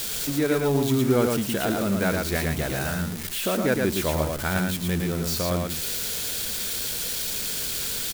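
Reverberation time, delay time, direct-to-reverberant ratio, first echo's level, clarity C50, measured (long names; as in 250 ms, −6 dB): no reverb audible, 113 ms, no reverb audible, −3.5 dB, no reverb audible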